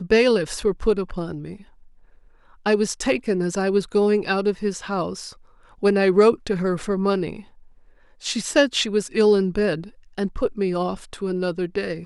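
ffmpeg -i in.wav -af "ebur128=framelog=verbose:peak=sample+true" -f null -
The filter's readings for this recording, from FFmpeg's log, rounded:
Integrated loudness:
  I:         -22.0 LUFS
  Threshold: -32.9 LUFS
Loudness range:
  LRA:         2.9 LU
  Threshold: -42.6 LUFS
  LRA low:   -24.3 LUFS
  LRA high:  -21.4 LUFS
Sample peak:
  Peak:       -5.7 dBFS
True peak:
  Peak:       -5.7 dBFS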